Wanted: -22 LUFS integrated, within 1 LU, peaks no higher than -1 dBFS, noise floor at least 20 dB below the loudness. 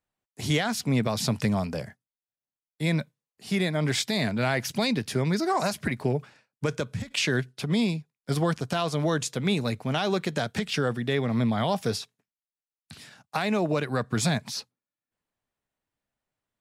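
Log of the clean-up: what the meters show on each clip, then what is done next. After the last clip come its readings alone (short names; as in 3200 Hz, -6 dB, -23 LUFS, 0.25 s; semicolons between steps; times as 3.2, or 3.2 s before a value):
loudness -27.5 LUFS; peak -13.5 dBFS; loudness target -22.0 LUFS
-> gain +5.5 dB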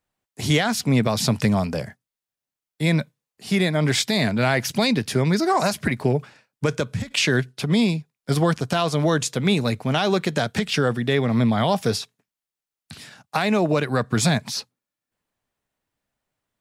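loudness -22.0 LUFS; peak -8.0 dBFS; noise floor -90 dBFS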